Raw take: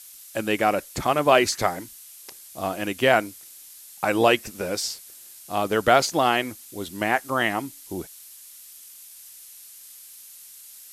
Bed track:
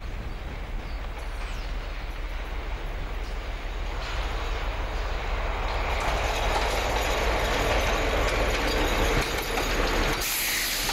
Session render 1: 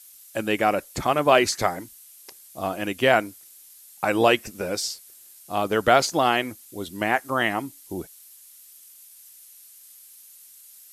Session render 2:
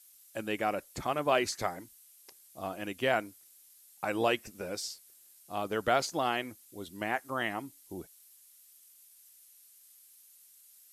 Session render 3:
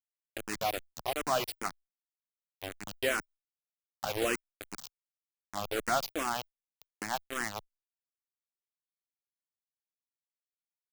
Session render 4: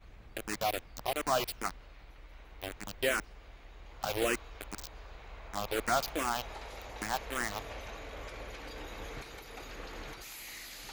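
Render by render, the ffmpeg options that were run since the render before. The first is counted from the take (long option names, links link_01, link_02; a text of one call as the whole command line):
ffmpeg -i in.wav -af "afftdn=noise_reduction=6:noise_floor=-46" out.wav
ffmpeg -i in.wav -af "volume=-10dB" out.wav
ffmpeg -i in.wav -filter_complex "[0:a]acrusher=bits=4:mix=0:aa=0.000001,asplit=2[link_01][link_02];[link_02]afreqshift=-2.6[link_03];[link_01][link_03]amix=inputs=2:normalize=1" out.wav
ffmpeg -i in.wav -i bed.wav -filter_complex "[1:a]volume=-19.5dB[link_01];[0:a][link_01]amix=inputs=2:normalize=0" out.wav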